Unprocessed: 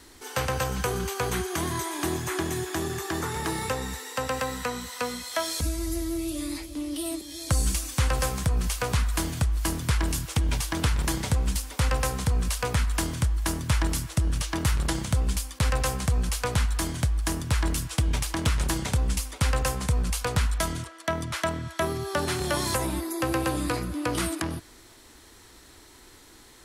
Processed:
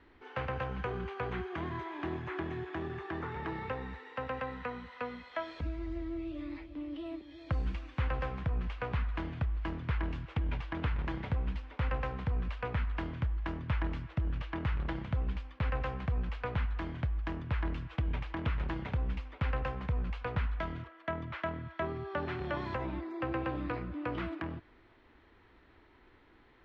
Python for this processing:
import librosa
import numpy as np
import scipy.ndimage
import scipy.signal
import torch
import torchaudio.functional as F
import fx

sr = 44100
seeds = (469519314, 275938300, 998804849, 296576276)

y = scipy.signal.sosfilt(scipy.signal.butter(4, 2700.0, 'lowpass', fs=sr, output='sos'), x)
y = y * librosa.db_to_amplitude(-8.0)